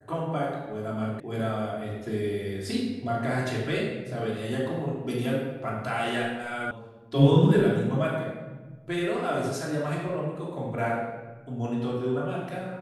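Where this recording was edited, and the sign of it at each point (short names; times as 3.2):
1.2 sound cut off
6.71 sound cut off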